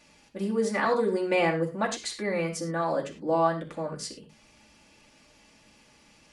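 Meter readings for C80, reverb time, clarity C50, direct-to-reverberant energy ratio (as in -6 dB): 13.0 dB, no single decay rate, 9.0 dB, -2.5 dB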